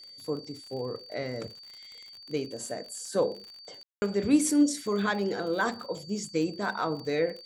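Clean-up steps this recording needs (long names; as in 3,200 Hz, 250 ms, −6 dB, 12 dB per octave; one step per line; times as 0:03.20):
click removal
notch filter 4,600 Hz, Q 30
ambience match 0:03.83–0:04.02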